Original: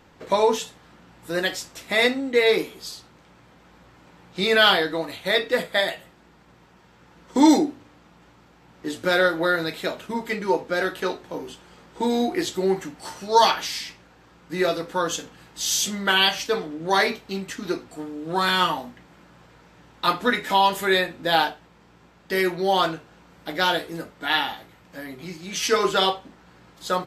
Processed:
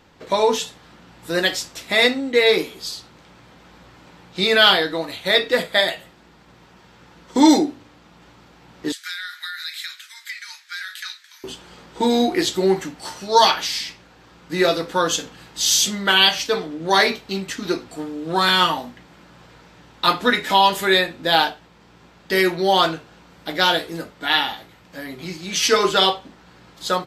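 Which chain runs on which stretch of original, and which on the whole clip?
8.92–11.44 s: steep high-pass 1.6 kHz + peaking EQ 2.8 kHz -8 dB 0.33 oct + compression 12:1, threshold -32 dBFS
whole clip: peaking EQ 4.1 kHz +4 dB 1.2 oct; level rider gain up to 4.5 dB

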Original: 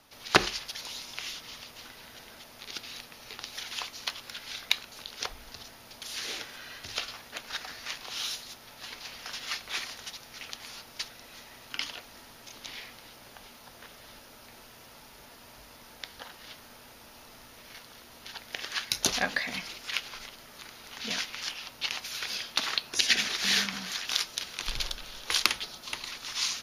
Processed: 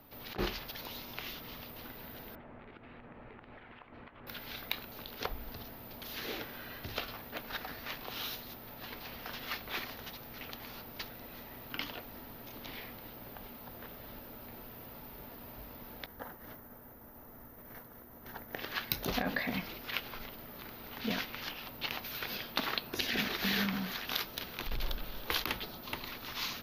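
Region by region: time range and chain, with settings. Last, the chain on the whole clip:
2.35–4.27 s: low-pass 2.2 kHz 24 dB/octave + compression, threshold -49 dBFS
16.06–18.57 s: expander -48 dBFS + high-order bell 3.4 kHz -10.5 dB 1.3 oct
whole clip: FFT filter 280 Hz 0 dB, 4.1 kHz -14 dB, 8.9 kHz -29 dB, 14 kHz +5 dB; compressor with a negative ratio -37 dBFS, ratio -1; trim +5.5 dB

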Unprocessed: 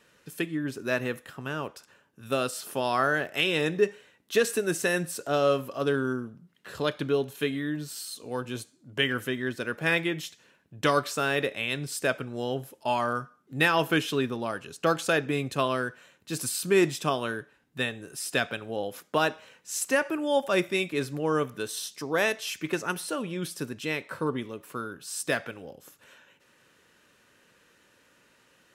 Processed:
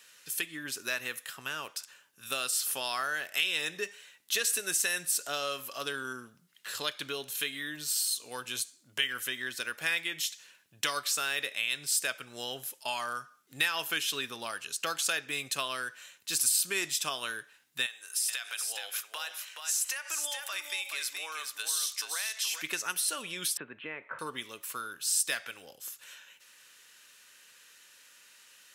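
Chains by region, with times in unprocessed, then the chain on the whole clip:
17.86–22.62 s: high-pass 860 Hz + compression 5:1, threshold -35 dBFS + delay 425 ms -6 dB
23.57–24.19 s: Gaussian low-pass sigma 5.2 samples + bass shelf 160 Hz -6 dB + three bands compressed up and down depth 100%
whole clip: tilt shelf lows -9.5 dB, about 730 Hz; compression 2:1, threshold -30 dBFS; treble shelf 2.8 kHz +9.5 dB; trim -6.5 dB

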